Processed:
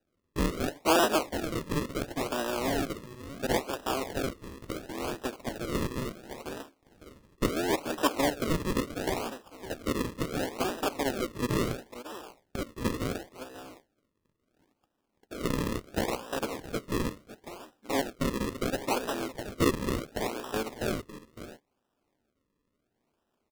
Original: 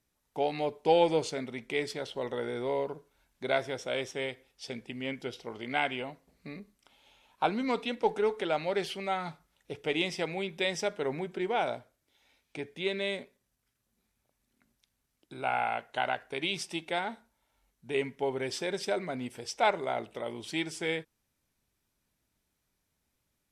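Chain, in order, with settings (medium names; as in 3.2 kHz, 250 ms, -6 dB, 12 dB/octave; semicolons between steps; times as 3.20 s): cycle switcher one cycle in 3, inverted; in parallel at 0 dB: compression, threshold -37 dBFS, peak gain reduction 16.5 dB; on the sum: low-pass that closes with the level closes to 1.4 kHz, closed at -25 dBFS; brick-wall FIR band-pass 200–3300 Hz; on a send: delay 557 ms -13.5 dB; on the sum: decimation with a swept rate 40×, swing 100% 0.72 Hz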